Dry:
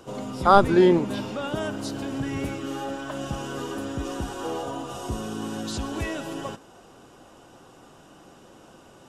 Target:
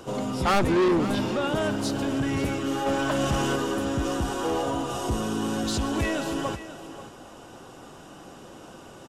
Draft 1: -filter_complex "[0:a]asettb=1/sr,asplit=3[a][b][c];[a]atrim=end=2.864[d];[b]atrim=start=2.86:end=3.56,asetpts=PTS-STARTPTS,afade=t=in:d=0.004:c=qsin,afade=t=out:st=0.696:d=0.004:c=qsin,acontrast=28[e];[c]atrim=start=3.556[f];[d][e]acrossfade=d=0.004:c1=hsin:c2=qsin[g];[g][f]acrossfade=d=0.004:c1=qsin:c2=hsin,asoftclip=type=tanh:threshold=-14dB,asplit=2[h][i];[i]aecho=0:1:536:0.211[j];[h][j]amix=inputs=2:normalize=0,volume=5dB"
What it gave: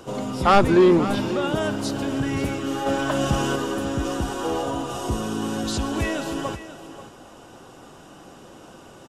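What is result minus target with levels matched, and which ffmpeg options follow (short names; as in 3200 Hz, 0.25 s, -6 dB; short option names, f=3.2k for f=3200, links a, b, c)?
soft clip: distortion -7 dB
-filter_complex "[0:a]asettb=1/sr,asplit=3[a][b][c];[a]atrim=end=2.864[d];[b]atrim=start=2.86:end=3.56,asetpts=PTS-STARTPTS,afade=t=in:d=0.004:c=qsin,afade=t=out:st=0.696:d=0.004:c=qsin,acontrast=28[e];[c]atrim=start=3.556[f];[d][e]acrossfade=d=0.004:c1=hsin:c2=qsin[g];[g][f]acrossfade=d=0.004:c1=qsin:c2=hsin,asoftclip=type=tanh:threshold=-23.5dB,asplit=2[h][i];[i]aecho=0:1:536:0.211[j];[h][j]amix=inputs=2:normalize=0,volume=5dB"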